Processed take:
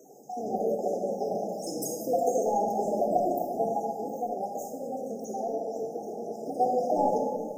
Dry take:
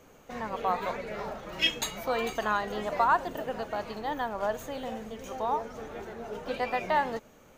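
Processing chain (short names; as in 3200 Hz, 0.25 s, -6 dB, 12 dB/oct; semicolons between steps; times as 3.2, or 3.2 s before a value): random spectral dropouts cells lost 45%; HPF 190 Hz 24 dB/oct; soft clip -17.5 dBFS, distortion -22 dB; brick-wall FIR band-stop 850–4900 Hz; bell 1500 Hz +7.5 dB 0.77 oct; 4.15–6.49 compressor 2:1, threshold -42 dBFS, peak gain reduction 7 dB; shoebox room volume 2600 m³, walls mixed, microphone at 3.4 m; gain +4 dB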